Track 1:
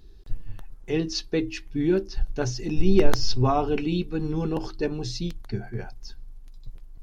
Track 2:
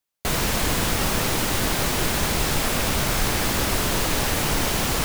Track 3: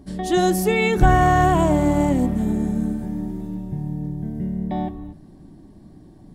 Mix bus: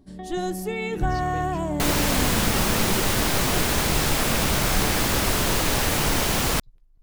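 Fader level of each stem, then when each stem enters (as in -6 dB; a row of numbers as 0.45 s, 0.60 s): -14.5 dB, +0.5 dB, -9.5 dB; 0.00 s, 1.55 s, 0.00 s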